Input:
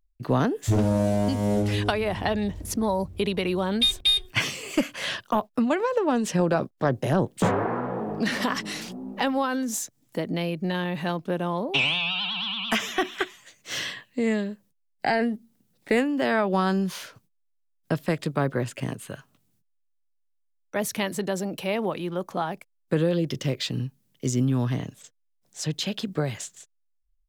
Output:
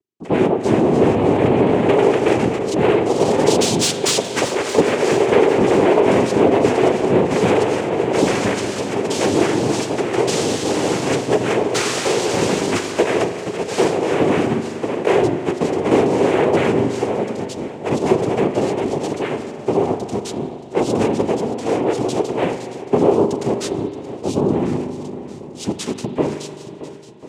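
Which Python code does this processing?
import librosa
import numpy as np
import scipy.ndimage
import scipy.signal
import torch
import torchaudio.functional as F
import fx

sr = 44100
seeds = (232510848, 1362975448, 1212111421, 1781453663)

p1 = fx.lowpass(x, sr, hz=fx.line((1.14, 1100.0), (2.26, 3000.0)), slope=24, at=(1.14, 2.26), fade=0.02)
p2 = fx.echo_pitch(p1, sr, ms=398, semitones=3, count=3, db_per_echo=-3.0)
p3 = fx.noise_vocoder(p2, sr, seeds[0], bands=4)
p4 = 10.0 ** (-14.5 / 20.0) * (np.abs((p3 / 10.0 ** (-14.5 / 20.0) + 3.0) % 4.0 - 2.0) - 1.0)
p5 = p3 + (p4 * 10.0 ** (-5.0 / 20.0))
p6 = fx.peak_eq(p5, sr, hz=410.0, db=14.5, octaves=0.81)
p7 = p6 + fx.echo_swing(p6, sr, ms=1043, ratio=1.5, feedback_pct=37, wet_db=-15.0, dry=0)
p8 = fx.rev_spring(p7, sr, rt60_s=2.3, pass_ms=(40,), chirp_ms=45, drr_db=8.5)
y = p8 * 10.0 ** (-3.0 / 20.0)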